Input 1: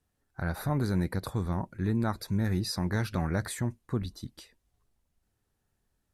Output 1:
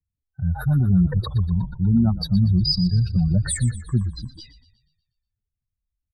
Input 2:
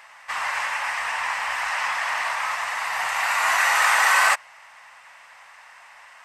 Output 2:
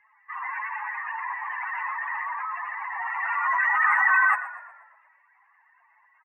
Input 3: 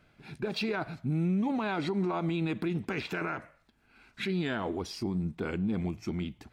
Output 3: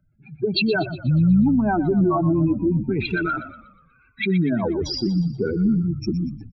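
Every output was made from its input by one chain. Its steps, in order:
spectral contrast raised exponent 3.3; frequency-shifting echo 0.121 s, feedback 60%, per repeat -35 Hz, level -13 dB; three-band expander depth 40%; normalise peaks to -9 dBFS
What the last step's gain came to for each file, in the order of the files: +11.0, -4.5, +11.5 dB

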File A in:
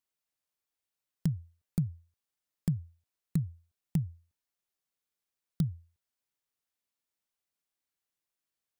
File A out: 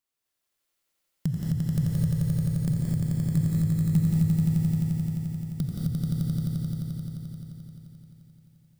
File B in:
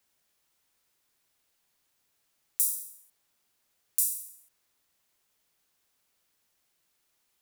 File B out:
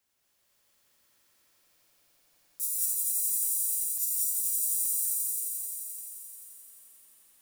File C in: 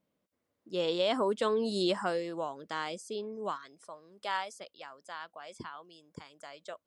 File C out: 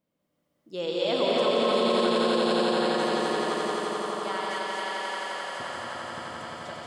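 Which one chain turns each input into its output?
swelling echo 87 ms, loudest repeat 5, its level -3.5 dB; non-linear reverb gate 0.27 s rising, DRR -2 dB; maximiser +12 dB; match loudness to -27 LUFS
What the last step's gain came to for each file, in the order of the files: -10.5, -15.5, -13.5 dB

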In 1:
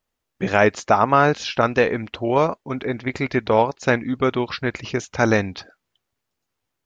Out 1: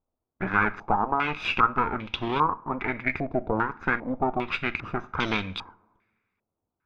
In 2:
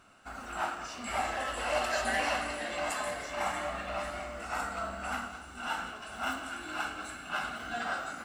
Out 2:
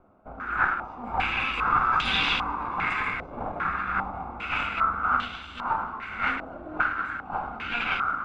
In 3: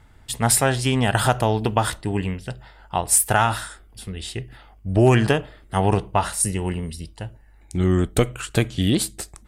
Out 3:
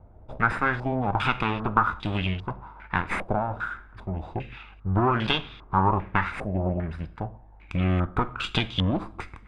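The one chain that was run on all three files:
minimum comb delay 0.82 ms; compressor 2:1, threshold -29 dBFS; two-slope reverb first 0.42 s, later 1.6 s, from -18 dB, DRR 13 dB; stepped low-pass 2.5 Hz 630–3300 Hz; match loudness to -27 LUFS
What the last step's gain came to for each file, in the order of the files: -1.5, +4.5, +1.0 dB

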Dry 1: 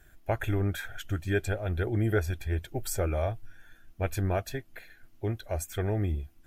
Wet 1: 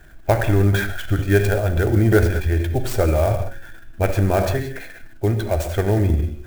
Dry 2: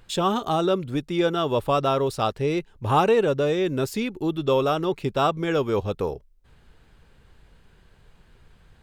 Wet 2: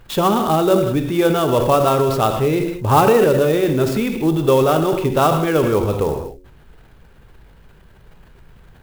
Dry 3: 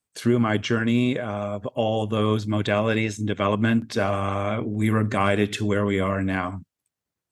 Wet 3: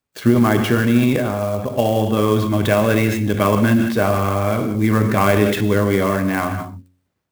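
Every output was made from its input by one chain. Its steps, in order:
non-linear reverb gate 0.22 s flat, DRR 8.5 dB; transient shaper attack +2 dB, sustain +7 dB; high shelf 3700 Hz -8.5 dB; de-hum 91.47 Hz, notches 6; clock jitter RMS 0.024 ms; normalise peaks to -2 dBFS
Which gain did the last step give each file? +10.5, +6.0, +5.5 dB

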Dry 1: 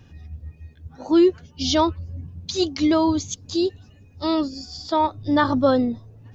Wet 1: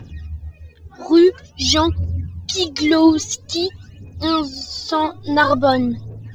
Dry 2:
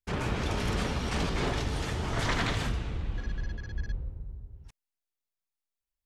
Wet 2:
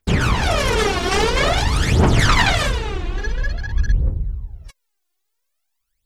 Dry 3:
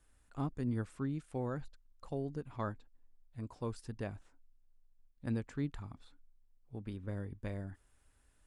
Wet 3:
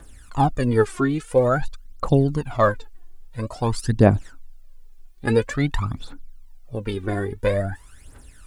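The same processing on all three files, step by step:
low shelf 120 Hz -6.5 dB; phaser 0.49 Hz, delay 2.9 ms, feedback 75%; normalise peaks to -2 dBFS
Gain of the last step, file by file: +4.5, +11.5, +18.5 dB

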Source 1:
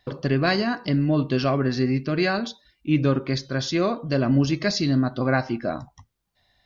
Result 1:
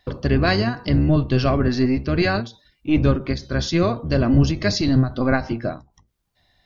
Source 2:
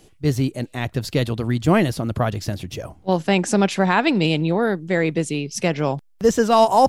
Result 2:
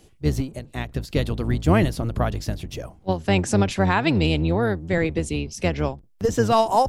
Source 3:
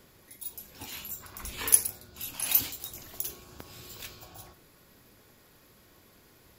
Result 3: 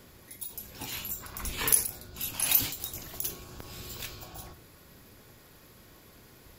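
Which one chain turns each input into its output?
octaver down 1 oct, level -1 dB; ending taper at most 180 dB/s; normalise peaks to -6 dBFS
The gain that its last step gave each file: +2.0, -2.5, +3.5 dB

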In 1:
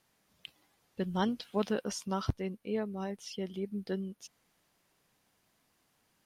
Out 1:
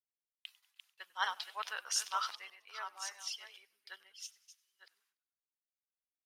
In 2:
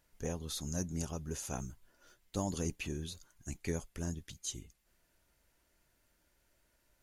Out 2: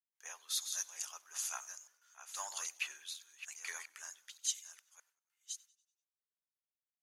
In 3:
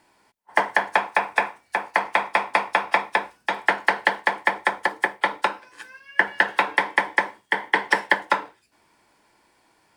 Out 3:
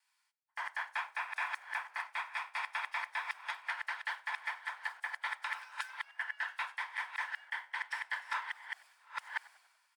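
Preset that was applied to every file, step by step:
reverse delay 0.625 s, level -6.5 dB; gate with hold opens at -55 dBFS; HPF 1100 Hz 24 dB/oct; reverse; compressor 5:1, threshold -35 dBFS; reverse; limiter -27.5 dBFS; on a send: frequency-shifting echo 97 ms, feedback 63%, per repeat -59 Hz, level -21.5 dB; on the sum: three-band expander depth 70%; gain +2.5 dB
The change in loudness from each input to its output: -3.5, -1.0, -16.5 LU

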